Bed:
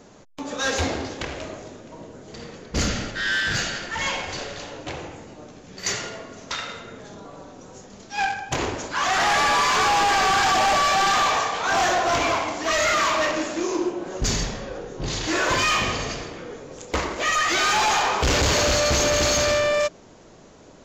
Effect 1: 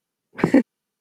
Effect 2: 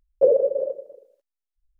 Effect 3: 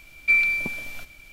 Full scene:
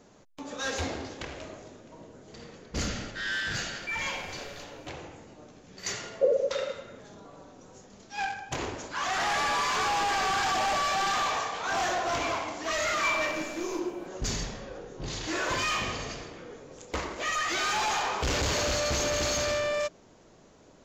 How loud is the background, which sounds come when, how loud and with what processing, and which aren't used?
bed -8 dB
3.59 add 3 -16.5 dB
6 add 2 -7 dB
12.75 add 3 -12 dB
not used: 1

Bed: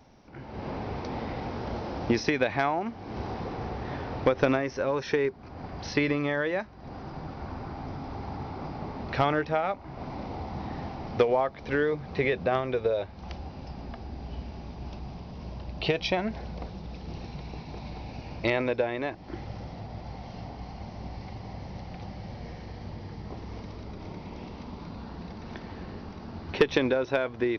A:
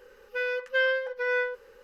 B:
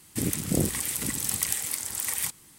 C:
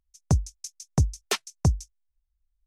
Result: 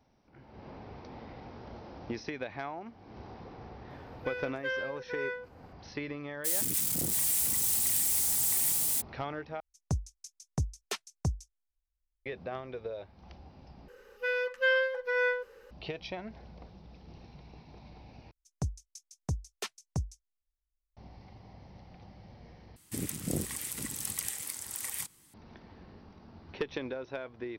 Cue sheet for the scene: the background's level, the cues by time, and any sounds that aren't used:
bed -12.5 dB
3.9 add A -9.5 dB
6.44 add B -13 dB, fades 0.02 s + switching spikes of -12 dBFS
9.6 replace with C -9.5 dB
13.88 replace with A -1.5 dB
18.31 replace with C -11.5 dB
22.76 replace with B -8 dB

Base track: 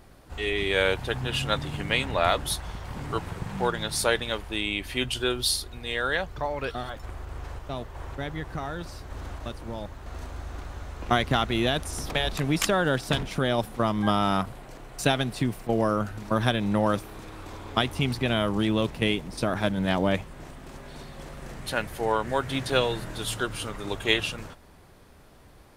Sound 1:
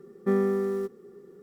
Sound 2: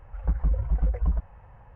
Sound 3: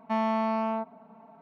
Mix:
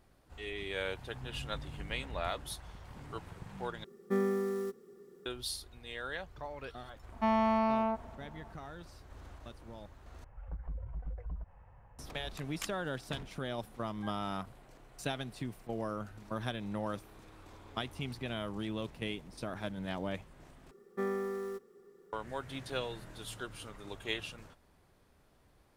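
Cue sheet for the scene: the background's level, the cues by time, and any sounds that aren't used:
base track -13.5 dB
1.09 add 2 -13.5 dB + compressor 2:1, threshold -37 dBFS
3.84 replace with 1 -7 dB + high shelf 2200 Hz +8.5 dB
7.12 add 3 -1.5 dB
10.24 replace with 2 -8 dB + compressor 2:1, threshold -36 dBFS
20.71 replace with 1 -3.5 dB + bell 200 Hz -10.5 dB 2.5 oct

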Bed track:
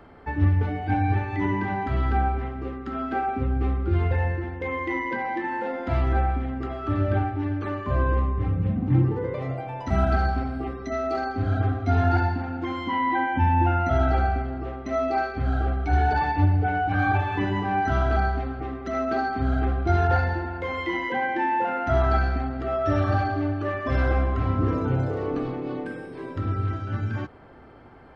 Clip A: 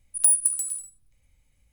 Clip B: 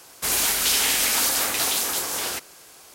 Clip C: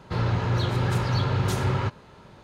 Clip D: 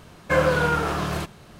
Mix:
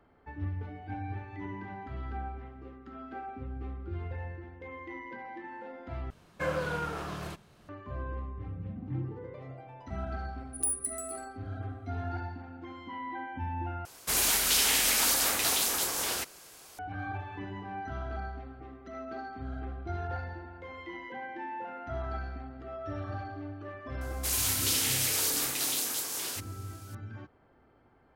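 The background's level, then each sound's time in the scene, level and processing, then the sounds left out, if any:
bed track -15 dB
6.1 replace with D -12 dB
10.39 add A -12 dB
13.85 replace with B -4.5 dB + low shelf 110 Hz +6 dB
24.01 add B -14 dB + high shelf 2200 Hz +7.5 dB
not used: C

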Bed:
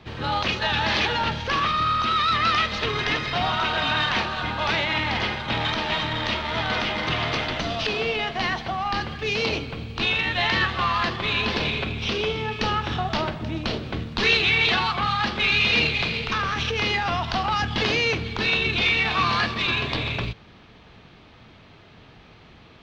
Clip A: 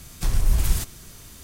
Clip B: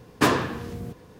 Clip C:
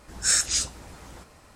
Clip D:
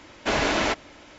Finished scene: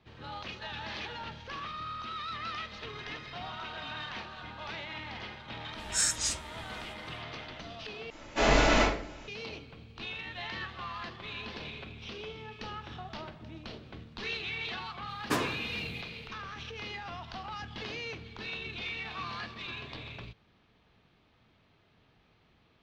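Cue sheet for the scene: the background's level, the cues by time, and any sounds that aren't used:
bed -17 dB
5.7 add C -6.5 dB, fades 0.10 s
8.1 replace with D -11.5 dB + shoebox room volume 67 m³, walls mixed, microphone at 2.4 m
15.09 add B -10.5 dB + bell 8200 Hz +2.5 dB 2.6 oct
not used: A

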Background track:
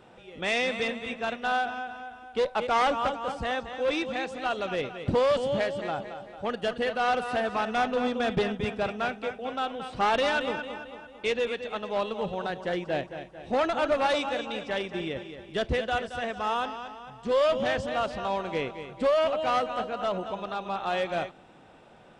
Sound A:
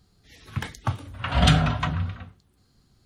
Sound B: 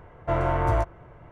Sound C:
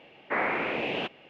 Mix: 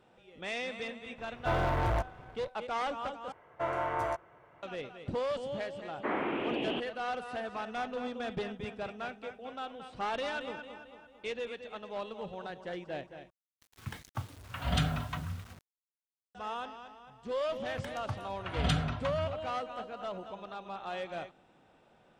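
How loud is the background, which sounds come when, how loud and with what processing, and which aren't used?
background track -10 dB
1.18 add B -12.5 dB + sample leveller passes 3
3.32 replace with B -4 dB + HPF 680 Hz 6 dB/oct
5.73 add C -3 dB + EQ curve 150 Hz 0 dB, 330 Hz +6 dB, 500 Hz -2 dB, 1200 Hz -2 dB, 2200 Hz -10 dB, 3200 Hz +2 dB, 4600 Hz -14 dB
13.3 replace with A -11.5 dB + bit-crush 7-bit
17.22 add A -11.5 dB

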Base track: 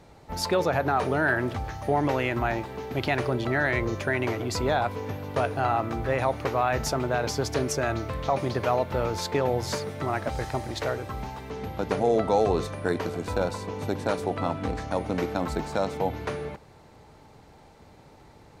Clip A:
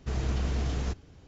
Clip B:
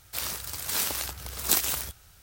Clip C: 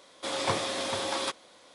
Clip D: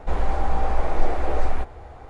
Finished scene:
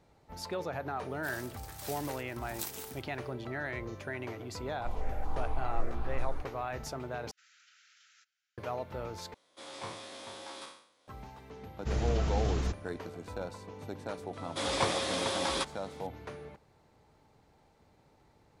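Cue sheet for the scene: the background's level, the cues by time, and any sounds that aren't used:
base track -12.5 dB
1.1 add B -16 dB
4.78 add D -12 dB + step phaser 4.3 Hz 450–2000 Hz
7.31 replace with A -17 dB + Chebyshev high-pass 1300 Hz, order 8
9.34 replace with C -16 dB + spectral trails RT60 0.62 s
11.79 add A -1 dB, fades 0.10 s
14.33 add C -1 dB

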